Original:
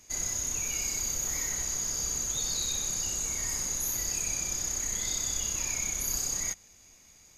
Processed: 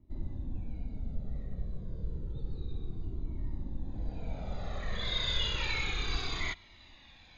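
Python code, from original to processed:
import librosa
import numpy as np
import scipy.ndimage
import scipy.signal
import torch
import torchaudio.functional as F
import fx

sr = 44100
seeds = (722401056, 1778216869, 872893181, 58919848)

y = fx.filter_sweep_lowpass(x, sr, from_hz=270.0, to_hz=2200.0, start_s=3.76, end_s=5.3, q=1.0)
y = fx.lowpass_res(y, sr, hz=3800.0, q=7.8)
y = fx.comb_cascade(y, sr, direction='falling', hz=0.3)
y = F.gain(torch.from_numpy(y), 8.5).numpy()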